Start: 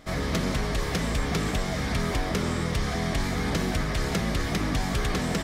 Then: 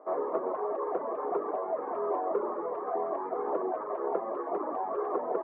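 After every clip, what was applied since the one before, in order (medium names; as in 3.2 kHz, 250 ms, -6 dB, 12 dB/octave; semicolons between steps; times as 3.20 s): reverb removal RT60 0.94 s; elliptic band-pass 370–1100 Hz, stop band 70 dB; trim +5.5 dB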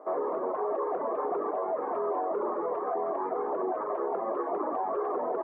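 peak limiter -26.5 dBFS, peak gain reduction 10.5 dB; trim +4 dB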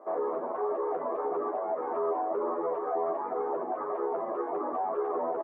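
doubling 12 ms -2 dB; trim -3.5 dB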